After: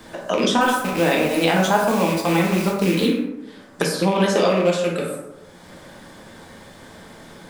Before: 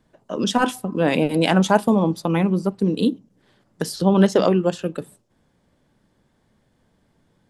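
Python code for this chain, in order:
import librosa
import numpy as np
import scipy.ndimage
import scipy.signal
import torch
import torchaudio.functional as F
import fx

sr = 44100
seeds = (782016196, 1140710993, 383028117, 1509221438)

y = fx.rattle_buzz(x, sr, strikes_db=-29.0, level_db=-24.0)
y = fx.low_shelf(y, sr, hz=420.0, db=-10.5)
y = fx.rider(y, sr, range_db=5, speed_s=2.0)
y = fx.quant_dither(y, sr, seeds[0], bits=6, dither='none', at=(0.61, 3.06))
y = fx.rev_plate(y, sr, seeds[1], rt60_s=0.77, hf_ratio=0.5, predelay_ms=0, drr_db=-2.5)
y = fx.band_squash(y, sr, depth_pct=70)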